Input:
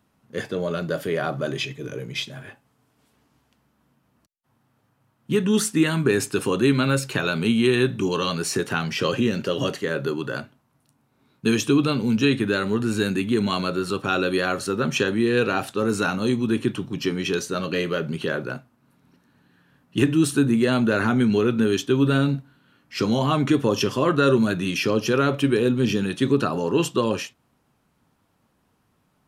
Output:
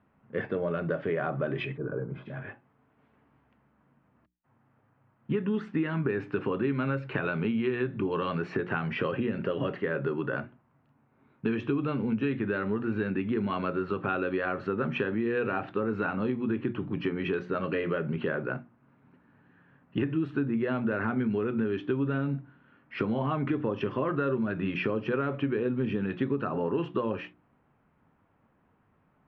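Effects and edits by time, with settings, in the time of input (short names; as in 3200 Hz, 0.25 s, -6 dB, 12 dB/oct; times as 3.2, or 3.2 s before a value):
1.77–2.26 spectral gain 1700–11000 Hz -22 dB
whole clip: LPF 2300 Hz 24 dB/oct; notches 60/120/180/240/300/360 Hz; compressor 5:1, threshold -26 dBFS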